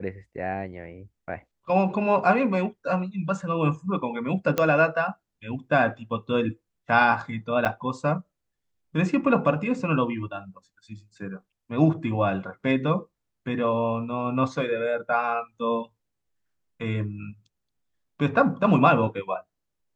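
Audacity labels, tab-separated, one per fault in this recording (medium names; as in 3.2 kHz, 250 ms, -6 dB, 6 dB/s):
4.580000	4.580000	pop -9 dBFS
7.650000	7.660000	dropout 7.6 ms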